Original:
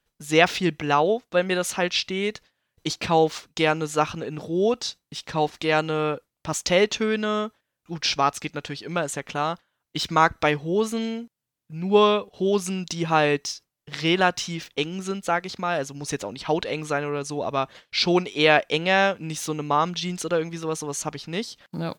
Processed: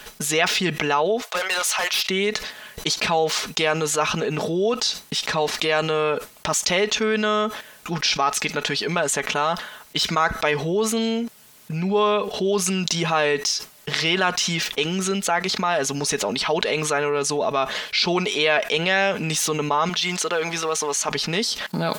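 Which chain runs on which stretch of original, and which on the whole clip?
1.22–2.09 HPF 600 Hz 24 dB/oct + hard clip -27 dBFS
19.89–21.09 G.711 law mismatch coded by A + HPF 520 Hz 6 dB/oct + high shelf 10000 Hz -10.5 dB
whole clip: low shelf 290 Hz -10.5 dB; comb 4.7 ms, depth 44%; fast leveller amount 70%; gain -4 dB

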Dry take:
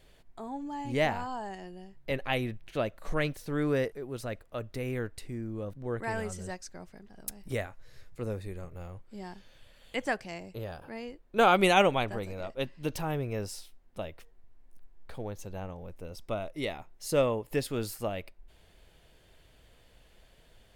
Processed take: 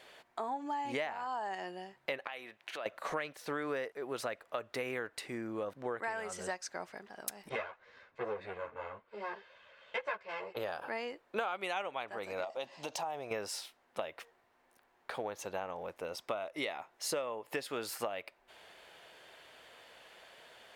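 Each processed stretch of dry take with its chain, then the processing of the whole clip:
2.27–2.86 compressor 10:1, threshold -41 dBFS + HPF 560 Hz 6 dB/oct
7.49–10.57 minimum comb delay 1.9 ms + LPF 2900 Hz + ensemble effect
12.44–13.31 EQ curve 430 Hz 0 dB, 750 Hz +11 dB, 1500 Hz -4 dB, 6800 Hz +11 dB, 11000 Hz +1 dB + compressor 4:1, threshold -41 dBFS
whole clip: HPF 970 Hz 12 dB/oct; tilt -3.5 dB/oct; compressor 12:1, threshold -47 dBFS; gain +13.5 dB

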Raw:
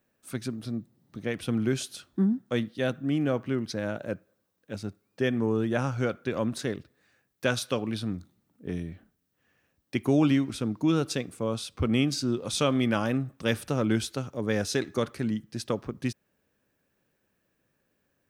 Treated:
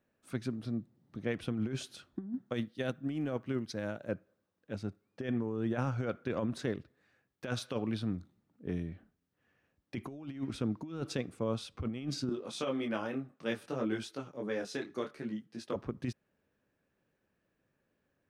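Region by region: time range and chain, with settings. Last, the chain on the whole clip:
2.54–4.09 high shelf 4900 Hz +10.5 dB + upward expander, over -37 dBFS
12.29–15.76 HPF 210 Hz + detuned doubles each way 20 cents
whole clip: LPF 2800 Hz 6 dB/oct; negative-ratio compressor -28 dBFS, ratio -0.5; gain -5 dB

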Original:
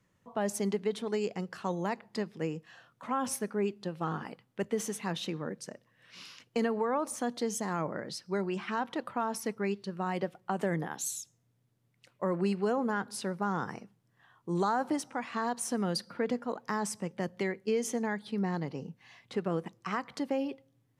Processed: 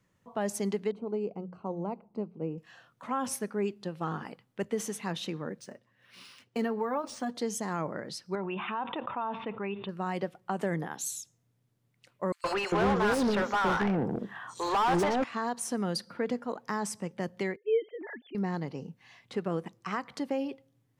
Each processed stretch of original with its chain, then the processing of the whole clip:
0.91–2.58 running mean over 25 samples + notches 60/120/180 Hz + mismatched tape noise reduction decoder only
5.6–7.35 notch comb 160 Hz + decimation joined by straight lines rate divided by 3×
8.35–9.89 rippled Chebyshev low-pass 3700 Hz, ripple 9 dB + fast leveller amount 70%
12.32–15.24 three bands offset in time highs, mids, lows 0.12/0.4 s, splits 540/4200 Hz + overdrive pedal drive 30 dB, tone 1600 Hz, clips at -18.5 dBFS
17.56–18.35 sine-wave speech + band shelf 1100 Hz -8.5 dB 1.1 oct
whole clip: dry

